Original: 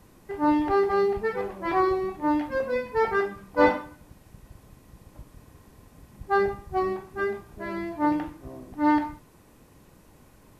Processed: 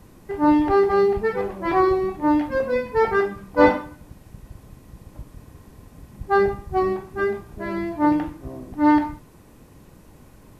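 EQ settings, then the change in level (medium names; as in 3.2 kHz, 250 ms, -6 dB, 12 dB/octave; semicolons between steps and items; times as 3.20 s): bass shelf 400 Hz +4.5 dB; +3.0 dB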